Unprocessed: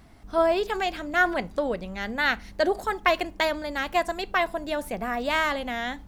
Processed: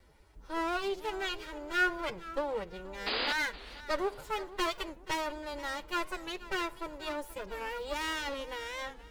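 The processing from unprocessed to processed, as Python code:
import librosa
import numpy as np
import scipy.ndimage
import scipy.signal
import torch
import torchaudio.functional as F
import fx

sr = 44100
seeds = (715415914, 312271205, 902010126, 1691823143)

y = fx.lower_of_two(x, sr, delay_ms=2.1)
y = fx.stretch_vocoder(y, sr, factor=1.5)
y = fx.spec_paint(y, sr, seeds[0], shape='noise', start_s=3.06, length_s=0.27, low_hz=210.0, high_hz=5000.0, level_db=-26.0)
y = fx.echo_feedback(y, sr, ms=481, feedback_pct=30, wet_db=-17.0)
y = fx.record_warp(y, sr, rpm=45.0, depth_cents=160.0)
y = F.gain(torch.from_numpy(y), -7.0).numpy()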